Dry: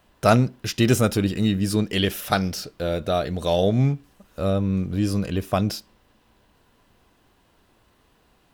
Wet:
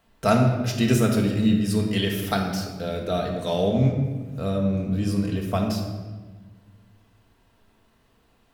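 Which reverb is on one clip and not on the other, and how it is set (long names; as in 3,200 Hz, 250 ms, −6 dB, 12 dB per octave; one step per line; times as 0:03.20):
rectangular room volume 1,200 cubic metres, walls mixed, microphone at 1.6 metres
level −5 dB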